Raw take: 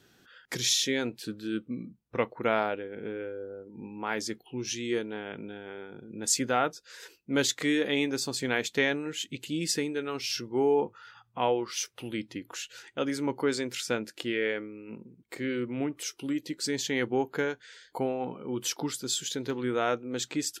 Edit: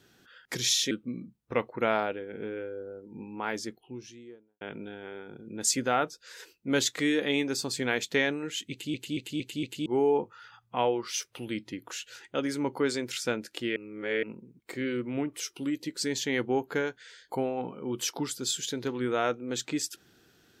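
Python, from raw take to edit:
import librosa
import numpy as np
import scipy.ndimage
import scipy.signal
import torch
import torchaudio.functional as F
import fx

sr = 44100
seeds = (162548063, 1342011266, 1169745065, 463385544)

y = fx.studio_fade_out(x, sr, start_s=3.93, length_s=1.31)
y = fx.edit(y, sr, fx.cut(start_s=0.91, length_s=0.63),
    fx.stutter_over(start_s=9.34, slice_s=0.23, count=5),
    fx.reverse_span(start_s=14.39, length_s=0.47), tone=tone)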